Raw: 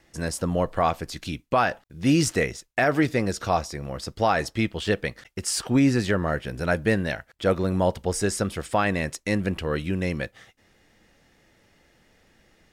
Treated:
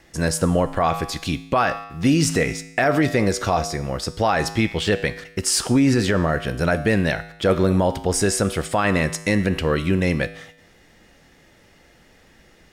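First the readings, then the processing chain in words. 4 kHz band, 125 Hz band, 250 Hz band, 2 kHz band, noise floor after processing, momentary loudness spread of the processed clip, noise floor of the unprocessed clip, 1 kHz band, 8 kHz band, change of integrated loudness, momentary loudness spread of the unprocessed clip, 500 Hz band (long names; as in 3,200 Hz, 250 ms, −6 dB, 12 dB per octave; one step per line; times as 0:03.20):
+6.0 dB, +5.0 dB, +4.0 dB, +4.0 dB, −54 dBFS, 6 LU, −64 dBFS, +3.0 dB, +6.5 dB, +4.5 dB, 10 LU, +4.0 dB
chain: tuned comb filter 54 Hz, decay 0.84 s, harmonics odd, mix 60%
boost into a limiter +22 dB
level −8 dB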